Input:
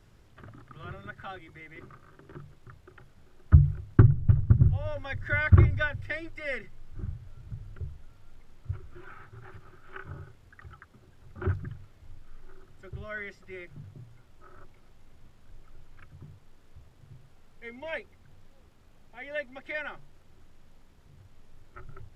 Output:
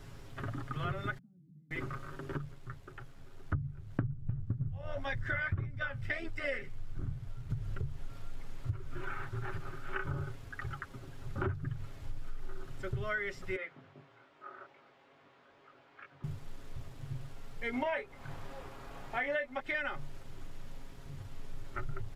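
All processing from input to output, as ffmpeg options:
-filter_complex "[0:a]asettb=1/sr,asplit=3[a][b][c];[a]atrim=end=1.184[d];[b]atrim=start=1.18:end=1.71,asetpts=PTS-STARTPTS,afade=t=in:d=0.004:c=qsin,afade=t=out:st=0.526:d=0.004:c=qsin,acompressor=threshold=-44dB:ratio=12:attack=3.2:release=140:knee=1:detection=peak,asuperpass=centerf=190:order=4:qfactor=4.1[e];[c]atrim=start=1.706[f];[d][e]acrossfade=d=0.004:c1=hsin:c2=qsin[g];[g][f]acrossfade=d=0.004:c1=qsin:c2=hsin,asettb=1/sr,asplit=3[h][i][j];[h]atrim=end=2.374[k];[i]atrim=start=2.37:end=7.5,asetpts=PTS-STARTPTS,afade=t=in:d=0.004:c=qsin,afade=t=out:st=5.126:d=0.004:c=qsin,flanger=delay=6.1:depth=9.2:regen=-51:speed=1.8:shape=sinusoidal,tremolo=f=82:d=0.462[l];[j]atrim=start=7.496[m];[k][l]acrossfade=d=0.004:c1=hsin:c2=qsin[n];[n][m]acrossfade=d=0.004:c1=qsin:c2=hsin,asettb=1/sr,asplit=3[o][p][q];[o]atrim=end=13.564[r];[p]atrim=start=13.56:end=16.24,asetpts=PTS-STARTPTS,afade=t=in:d=0.004:c=qsin,afade=t=out:st=2.676:d=0.004:c=qsin,flanger=delay=20:depth=4.3:speed=2.4,highpass=420,lowpass=2.8k[s];[q]atrim=start=16.236[t];[r][s]acrossfade=d=0.004:c1=hsin:c2=qsin[u];[u][t]acrossfade=d=0.004:c1=qsin:c2=hsin,asettb=1/sr,asplit=3[v][w][x];[v]atrim=end=17.734[y];[w]atrim=start=17.73:end=19.6,asetpts=PTS-STARTPTS,afade=t=in:d=0.004:c=qsin,afade=t=out:st=1.866:d=0.004:c=qsin,equalizer=f=960:w=0.5:g=9.5,asplit=2[z][aa];[aa]adelay=28,volume=-7dB[ab];[z][ab]amix=inputs=2:normalize=0,atrim=end_sample=82467[ac];[x]atrim=start=19.596[ad];[y][ac]acrossfade=d=0.004:c1=hsin:c2=qsin[ae];[ae][ad]acrossfade=d=0.004:c1=qsin:c2=hsin,aecho=1:1:7.3:0.48,acompressor=threshold=-39dB:ratio=16,volume=8dB"

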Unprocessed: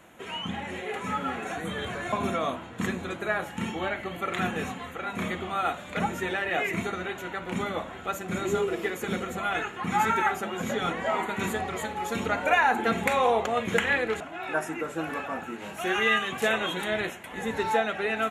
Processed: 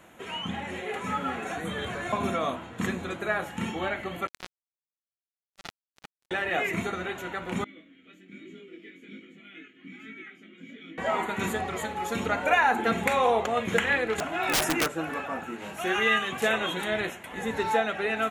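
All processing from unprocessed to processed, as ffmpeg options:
-filter_complex "[0:a]asettb=1/sr,asplit=3[a][b][c];[a]atrim=end=4.274[d];[b]atrim=start=4.27:end=6.31,asetpts=PTS-STARTPTS,afade=t=in:d=0.004:c=qsin,afade=t=out:st=2.036:d=0.004:c=qsin,highpass=f=340:p=1,acrusher=bits=2:mix=0:aa=0.5[e];[c]atrim=start=6.306[f];[d][e]acrossfade=d=0.004:c1=hsin:c2=qsin[g];[g][f]acrossfade=d=0.004:c1=qsin:c2=hsin,asettb=1/sr,asplit=3[h][i][j];[h]atrim=end=7.644[k];[i]atrim=start=7.64:end=10.98,asetpts=PTS-STARTPTS,afade=t=in:d=0.004:c=qsin,afade=t=out:st=3.336:d=0.004:c=qsin,asplit=3[l][m][n];[l]bandpass=f=270:t=q:w=8,volume=0dB[o];[m]bandpass=f=2.29k:t=q:w=8,volume=-6dB[p];[n]bandpass=f=3.01k:t=q:w=8,volume=-9dB[q];[o][p][q]amix=inputs=3:normalize=0,aecho=1:1:6.2:0.4,atrim=end_sample=147294,flanger=delay=18.5:depth=4.3:speed=1.2[r];[j]atrim=start=10.976[s];[k][r]acrossfade=d=0.004:c1=hsin:c2=qsin[t];[t][s]acrossfade=d=0.004:c1=qsin:c2=hsin,asettb=1/sr,asplit=3[u][v][w];[u]atrim=end=14.184[x];[v]atrim=start=14.18:end=14.88,asetpts=PTS-STARTPTS,afade=t=in:d=0.004:c=qsin,afade=t=out:st=0.696:d=0.004:c=qsin,highshelf=f=5.5k:g=4,acontrast=87,aeval=exprs='(mod(7.94*val(0)+1,2)-1)/7.94':c=same[y];[w]atrim=start=14.876[z];[x][y]acrossfade=d=0.004:c1=hsin:c2=qsin[aa];[aa][z]acrossfade=d=0.004:c1=qsin:c2=hsin"

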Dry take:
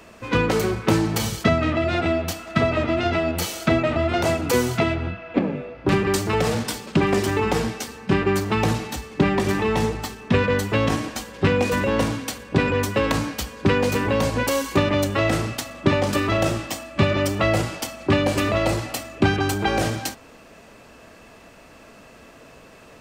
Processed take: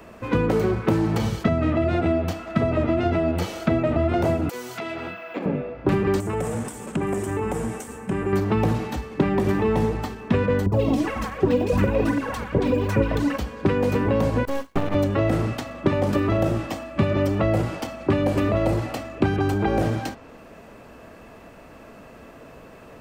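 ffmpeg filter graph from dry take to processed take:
-filter_complex "[0:a]asettb=1/sr,asplit=3[a][b][c];[a]atrim=end=4.494[d];[b]atrim=start=4.49:end=5.46,asetpts=PTS-STARTPTS,afade=t=in:d=0.004:c=qsin,afade=t=out:st=0.966:d=0.004:c=qsin,highpass=f=160:p=1,aemphasis=mode=production:type=riaa,acompressor=threshold=-27dB:ratio=6:attack=3.2:release=140:knee=1:detection=peak[e];[c]atrim=start=5.456[f];[d][e]acrossfade=d=0.004:c1=hsin:c2=qsin[g];[g][f]acrossfade=d=0.004:c1=qsin:c2=hsin,asettb=1/sr,asplit=3[h][i][j];[h]atrim=end=6.204[k];[i]atrim=start=6.2:end=8.33,asetpts=PTS-STARTPTS,afade=t=in:d=0.004:c=qsin,afade=t=out:st=2.126:d=0.004:c=qsin,highshelf=f=6.2k:t=q:w=3:g=12,acompressor=threshold=-26dB:ratio=3:attack=3.2:release=140:knee=1:detection=peak[l];[j]atrim=start=8.326[m];[k][l]acrossfade=d=0.004:c1=hsin:c2=qsin[n];[n][m]acrossfade=d=0.004:c1=qsin:c2=hsin,asettb=1/sr,asplit=3[o][p][q];[o]atrim=end=10.664[r];[p]atrim=start=10.66:end=13.38,asetpts=PTS-STARTPTS,afade=t=in:d=0.004:c=qsin,afade=t=out:st=2.716:d=0.004:c=qsin,aphaser=in_gain=1:out_gain=1:delay=4.1:decay=0.67:speed=1.7:type=triangular,acrossover=split=890|2800[s][t][u];[u]adelay=60[v];[t]adelay=340[w];[s][w][v]amix=inputs=3:normalize=0,atrim=end_sample=119952[x];[q]atrim=start=13.376[y];[r][x]acrossfade=d=0.004:c1=hsin:c2=qsin[z];[z][y]acrossfade=d=0.004:c1=qsin:c2=hsin,asettb=1/sr,asplit=3[aa][ab][ac];[aa]atrim=end=14.454[ad];[ab]atrim=start=14.45:end=14.95,asetpts=PTS-STARTPTS,afade=t=in:d=0.004:c=qsin,afade=t=out:st=0.496:d=0.004:c=qsin,agate=range=-33dB:threshold=-20dB:ratio=3:release=100:detection=peak,aeval=exprs='max(val(0),0)':c=same[ae];[ac]atrim=start=14.946[af];[ad][ae]acrossfade=d=0.004:c1=hsin:c2=qsin[ag];[ag][af]acrossfade=d=0.004:c1=qsin:c2=hsin,equalizer=f=5.8k:t=o:w=2.7:g=-10,acrossover=split=670|7100[ah][ai][aj];[ah]acompressor=threshold=-21dB:ratio=4[ak];[ai]acompressor=threshold=-34dB:ratio=4[al];[aj]acompressor=threshold=-56dB:ratio=4[am];[ak][al][am]amix=inputs=3:normalize=0,volume=3.5dB"

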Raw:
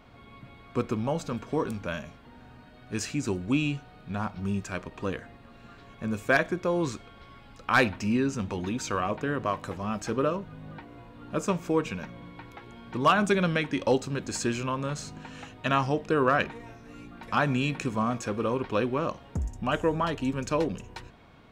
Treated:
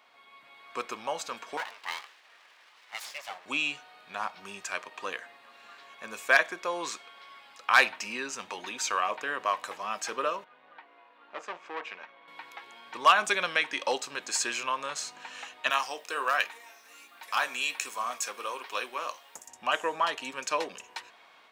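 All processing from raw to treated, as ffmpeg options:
-filter_complex "[0:a]asettb=1/sr,asplit=3[a][b][c];[a]atrim=end=1.574[d];[b]atrim=start=1.57:end=3.46,asetpts=PTS-STARTPTS,afade=t=in:d=0.004:c=qsin,afade=t=out:st=1.886:d=0.004:c=qsin,highpass=430,lowpass=3.3k,aeval=exprs='abs(val(0))':c=same[e];[c]atrim=start=3.456[f];[d][e]acrossfade=d=0.004:c1=hsin:c2=qsin[g];[g][f]acrossfade=d=0.004:c1=qsin:c2=hsin,asettb=1/sr,asplit=3[h][i][j];[h]atrim=end=10.444[k];[i]atrim=start=10.44:end=12.28,asetpts=PTS-STARTPTS,afade=t=in:d=0.004:c=qsin,afade=t=out:st=1.836:d=0.004:c=qsin,aeval=exprs='(tanh(25.1*val(0)+0.8)-tanh(0.8))/25.1':c=same,highpass=250,lowpass=2.9k[l];[j]atrim=start=12.276[m];[k][l]acrossfade=d=0.004:c1=hsin:c2=qsin[n];[n][m]acrossfade=d=0.004:c1=qsin:c2=hsin,asettb=1/sr,asplit=3[o][p][q];[o]atrim=end=15.704[r];[p]atrim=start=15.7:end=19.48,asetpts=PTS-STARTPTS,afade=t=in:d=0.004:c=qsin,afade=t=out:st=3.776:d=0.004:c=qsin,aemphasis=mode=production:type=bsi,flanger=delay=6.4:depth=6:regen=-65:speed=1.3:shape=triangular[s];[q]atrim=start=19.476[t];[r][s]acrossfade=d=0.004:c1=hsin:c2=qsin[u];[u][t]acrossfade=d=0.004:c1=qsin:c2=hsin,highpass=940,equalizer=f=1.4k:w=6.5:g=-4.5,dynaudnorm=f=370:g=3:m=5dB"

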